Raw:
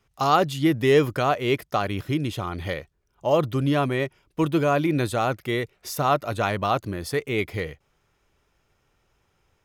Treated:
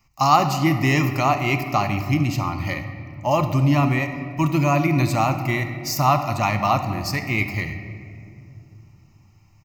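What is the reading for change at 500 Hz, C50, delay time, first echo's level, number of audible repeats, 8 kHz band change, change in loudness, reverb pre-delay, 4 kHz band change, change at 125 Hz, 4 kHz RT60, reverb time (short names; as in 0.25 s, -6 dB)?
-3.0 dB, 8.5 dB, 71 ms, -17.5 dB, 1, +6.0 dB, +3.0 dB, 3 ms, +2.0 dB, +7.0 dB, 1.3 s, 2.6 s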